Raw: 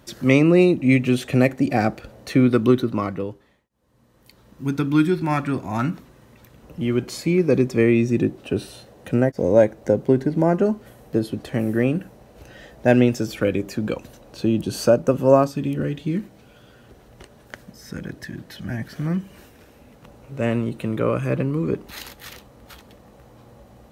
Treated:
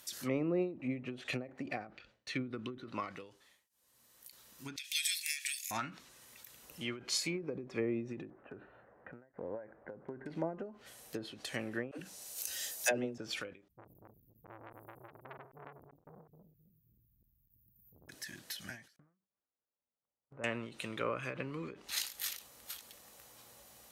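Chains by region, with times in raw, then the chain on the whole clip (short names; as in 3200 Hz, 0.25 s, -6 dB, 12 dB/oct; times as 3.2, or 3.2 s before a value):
1.87–2.85 low-pass opened by the level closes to 2100 Hz, open at -13 dBFS + gate with hold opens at -32 dBFS, closes at -39 dBFS + bell 760 Hz -8 dB 2.1 oct
4.76–5.71 steep high-pass 1800 Hz 72 dB/oct + tilt +3 dB/oct
8.3–10.26 steep low-pass 1700 Hz + compressor 2:1, threshold -25 dBFS
11.91–13.18 tone controls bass -4 dB, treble +15 dB + dispersion lows, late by 87 ms, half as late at 310 Hz
13.68–18.09 regenerating reverse delay 0.131 s, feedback 60%, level 0 dB + inverse Chebyshev band-stop 680–6200 Hz, stop band 80 dB + core saturation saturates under 880 Hz
18.96–20.44 LPF 1300 Hz 24 dB/oct + gate -38 dBFS, range -37 dB + compressor 1.5:1, threshold -33 dBFS
whole clip: treble ducked by the level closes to 670 Hz, closed at -13.5 dBFS; pre-emphasis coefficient 0.97; ending taper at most 130 dB/s; gain +7.5 dB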